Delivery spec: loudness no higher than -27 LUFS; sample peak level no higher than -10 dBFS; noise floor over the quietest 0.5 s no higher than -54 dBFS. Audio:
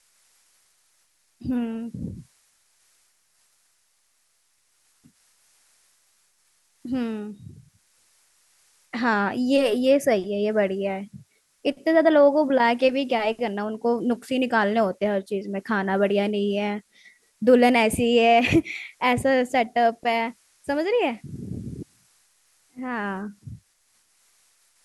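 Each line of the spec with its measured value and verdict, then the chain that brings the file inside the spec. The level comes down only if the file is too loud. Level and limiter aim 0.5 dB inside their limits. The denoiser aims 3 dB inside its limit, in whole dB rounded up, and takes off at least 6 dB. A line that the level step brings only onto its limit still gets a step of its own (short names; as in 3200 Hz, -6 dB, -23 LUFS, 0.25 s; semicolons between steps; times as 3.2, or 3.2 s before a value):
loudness -22.5 LUFS: fail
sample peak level -6.5 dBFS: fail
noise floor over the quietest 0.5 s -67 dBFS: OK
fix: gain -5 dB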